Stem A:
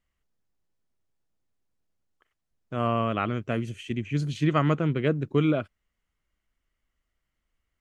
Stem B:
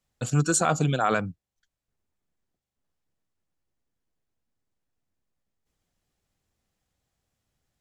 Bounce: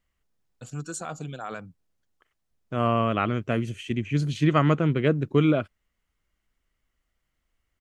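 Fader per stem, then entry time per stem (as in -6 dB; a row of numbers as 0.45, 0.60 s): +2.5, -12.0 dB; 0.00, 0.40 s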